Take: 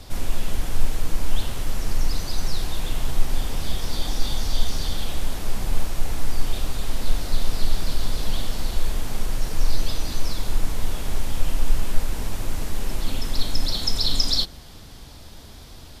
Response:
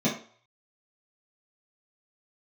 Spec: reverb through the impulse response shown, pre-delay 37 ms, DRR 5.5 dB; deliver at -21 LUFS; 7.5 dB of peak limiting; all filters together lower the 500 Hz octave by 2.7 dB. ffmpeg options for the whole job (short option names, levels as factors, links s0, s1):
-filter_complex "[0:a]equalizer=f=500:t=o:g=-3.5,alimiter=limit=0.266:level=0:latency=1,asplit=2[s0][s1];[1:a]atrim=start_sample=2205,adelay=37[s2];[s1][s2]afir=irnorm=-1:irlink=0,volume=0.141[s3];[s0][s3]amix=inputs=2:normalize=0,volume=2.37"